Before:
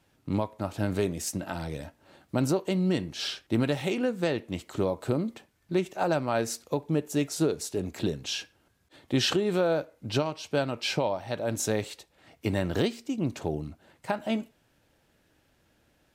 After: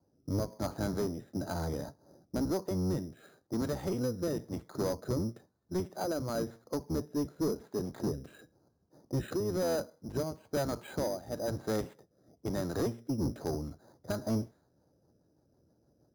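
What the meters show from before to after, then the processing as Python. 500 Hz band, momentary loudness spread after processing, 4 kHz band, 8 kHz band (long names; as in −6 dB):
−5.5 dB, 7 LU, −13.5 dB, −8.5 dB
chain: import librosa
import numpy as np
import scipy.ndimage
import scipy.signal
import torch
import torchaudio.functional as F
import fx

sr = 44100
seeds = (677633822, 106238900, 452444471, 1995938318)

y = fx.octave_divider(x, sr, octaves=1, level_db=1.0)
y = scipy.signal.sosfilt(scipy.signal.butter(4, 1600.0, 'lowpass', fs=sr, output='sos'), y)
y = fx.env_lowpass(y, sr, base_hz=620.0, full_db=-22.0)
y = scipy.signal.sosfilt(scipy.signal.butter(2, 72.0, 'highpass', fs=sr, output='sos'), y)
y = fx.low_shelf(y, sr, hz=160.0, db=-8.0)
y = fx.rider(y, sr, range_db=3, speed_s=0.5)
y = fx.rotary_switch(y, sr, hz=1.0, then_hz=6.3, switch_at_s=14.28)
y = np.repeat(y[::8], 8)[:len(y)]
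y = 10.0 ** (-25.0 / 20.0) * np.tanh(y / 10.0 ** (-25.0 / 20.0))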